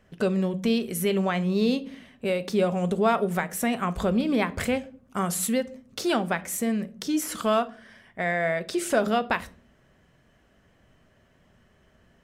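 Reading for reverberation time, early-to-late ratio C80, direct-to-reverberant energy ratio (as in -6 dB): no single decay rate, 25.0 dB, 11.5 dB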